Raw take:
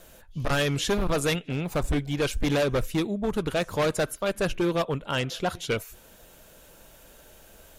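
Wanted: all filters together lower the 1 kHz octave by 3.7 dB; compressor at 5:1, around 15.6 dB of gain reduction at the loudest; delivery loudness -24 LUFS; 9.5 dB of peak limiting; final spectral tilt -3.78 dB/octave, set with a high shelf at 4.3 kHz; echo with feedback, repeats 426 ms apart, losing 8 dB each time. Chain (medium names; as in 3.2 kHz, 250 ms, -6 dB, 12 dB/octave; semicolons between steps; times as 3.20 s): peaking EQ 1 kHz -6 dB; treble shelf 4.3 kHz +7.5 dB; compression 5:1, threshold -40 dBFS; peak limiter -35.5 dBFS; feedback delay 426 ms, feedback 40%, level -8 dB; trim +20.5 dB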